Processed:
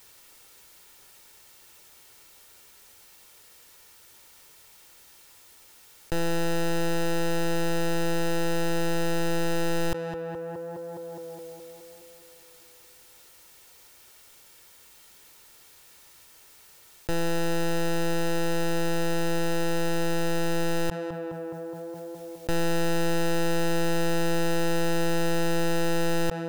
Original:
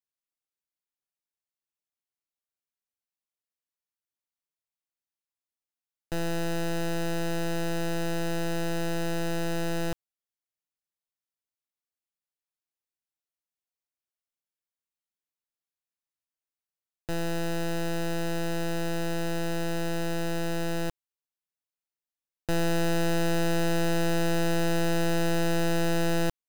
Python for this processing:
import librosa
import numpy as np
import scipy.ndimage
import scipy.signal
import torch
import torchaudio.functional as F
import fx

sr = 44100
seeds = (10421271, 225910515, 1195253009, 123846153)

y = x + 0.35 * np.pad(x, (int(2.2 * sr / 1000.0), 0))[:len(x)]
y = fx.echo_tape(y, sr, ms=208, feedback_pct=73, wet_db=-22.5, lp_hz=1500.0, drive_db=26.0, wow_cents=17)
y = fx.env_flatten(y, sr, amount_pct=70)